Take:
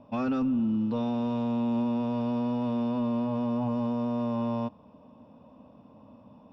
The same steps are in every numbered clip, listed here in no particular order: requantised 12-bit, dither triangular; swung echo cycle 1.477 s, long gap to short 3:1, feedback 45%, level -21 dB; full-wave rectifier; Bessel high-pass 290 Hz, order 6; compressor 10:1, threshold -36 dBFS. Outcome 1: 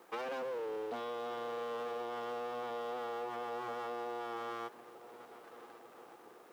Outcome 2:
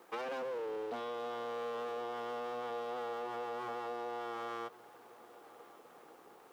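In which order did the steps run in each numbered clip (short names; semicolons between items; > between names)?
swung echo > full-wave rectifier > Bessel high-pass > compressor > requantised; full-wave rectifier > Bessel high-pass > requantised > compressor > swung echo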